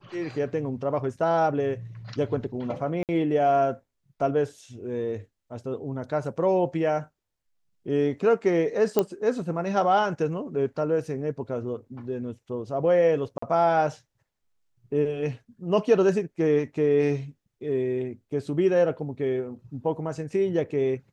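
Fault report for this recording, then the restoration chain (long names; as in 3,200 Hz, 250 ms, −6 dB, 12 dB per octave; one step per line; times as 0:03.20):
0:03.03–0:03.09: drop-out 58 ms
0:08.99: click −9 dBFS
0:13.38–0:13.42: drop-out 44 ms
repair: click removal
repair the gap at 0:03.03, 58 ms
repair the gap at 0:13.38, 44 ms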